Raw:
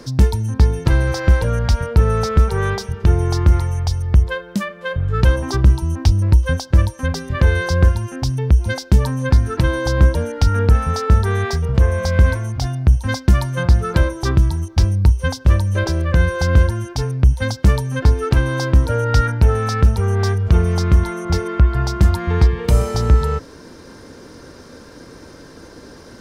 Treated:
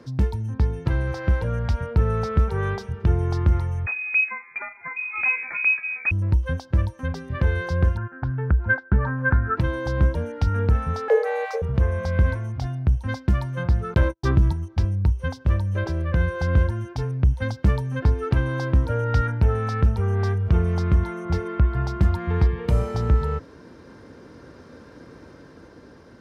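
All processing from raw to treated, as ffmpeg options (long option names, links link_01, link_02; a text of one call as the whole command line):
ffmpeg -i in.wav -filter_complex "[0:a]asettb=1/sr,asplit=3[link_01][link_02][link_03];[link_01]atrim=end=3.864[link_04];[link_02]atrim=start=3.86:end=6.11,asetpts=PTS-STARTPTS,afade=type=in:duration=0.004:curve=qsin,afade=type=out:start_time=2.246:duration=0.004:curve=qsin,acrusher=samples=11:mix=1:aa=0.000001:lfo=1:lforange=6.6:lforate=1.5,bandreject=frequency=50:width_type=h:width=6,bandreject=frequency=100:width_type=h:width=6,bandreject=frequency=150:width_type=h:width=6,bandreject=frequency=200:width_type=h:width=6,bandreject=frequency=250:width_type=h:width=6,bandreject=frequency=300:width_type=h:width=6,bandreject=frequency=350:width_type=h:width=6,bandreject=frequency=400:width_type=h:width=6,lowpass=frequency=2200:width_type=q:width=0.5098,lowpass=frequency=2200:width_type=q:width=0.6013,lowpass=frequency=2200:width_type=q:width=0.9,lowpass=frequency=2200:width_type=q:width=2.563,afreqshift=-2600[link_05];[link_03]atrim=start=6.106[link_06];[link_04][link_05]acrossfade=duration=0.004:curve1=hsin:curve2=qsin[link_07];[link_07][link_06]acrossfade=duration=0.004:curve1=qsin:curve2=hsin,asettb=1/sr,asplit=3[link_08][link_09][link_10];[link_08]atrim=end=7.974[link_11];[link_09]atrim=start=7.97:end=9.57,asetpts=PTS-STARTPTS,afade=type=in:duration=0.004:curve=qsin,afade=type=out:start_time=1.596:duration=0.004:curve=qsin,agate=range=-9dB:threshold=-27dB:ratio=16:release=100:detection=peak,lowpass=frequency=1500:width_type=q:width=7.4[link_12];[link_10]atrim=start=9.566[link_13];[link_11][link_12]acrossfade=duration=0.004:curve1=hsin:curve2=qsin[link_14];[link_14][link_13]acrossfade=duration=0.004:curve1=qsin:curve2=hsin,asettb=1/sr,asplit=3[link_15][link_16][link_17];[link_15]atrim=end=11.084[link_18];[link_16]atrim=start=11.08:end=11.62,asetpts=PTS-STARTPTS,afade=type=in:duration=0.004:curve=qsin,afade=type=out:start_time=0.536:duration=0.004:curve=qsin,aeval=exprs='sgn(val(0))*max(abs(val(0))-0.0133,0)':channel_layout=same,afreqshift=380[link_19];[link_17]atrim=start=11.616[link_20];[link_18][link_19]acrossfade=duration=0.004:curve1=hsin:curve2=qsin[link_21];[link_21][link_20]acrossfade=duration=0.004:curve1=qsin:curve2=hsin,asettb=1/sr,asplit=3[link_22][link_23][link_24];[link_22]atrim=end=13.944[link_25];[link_23]atrim=start=13.94:end=14.53,asetpts=PTS-STARTPTS,afade=type=in:duration=0.004:curve=qsin,afade=type=out:start_time=0.586:duration=0.004:curve=qsin,agate=range=-49dB:threshold=-23dB:ratio=16:release=100:detection=peak,acontrast=49[link_26];[link_24]atrim=start=14.526[link_27];[link_25][link_26]acrossfade=duration=0.004:curve1=hsin:curve2=qsin[link_28];[link_28][link_27]acrossfade=duration=0.004:curve1=qsin:curve2=hsin,dynaudnorm=framelen=340:gausssize=9:maxgain=7dB,highpass=57,bass=frequency=250:gain=2,treble=frequency=4000:gain=-12,volume=-8.5dB" out.wav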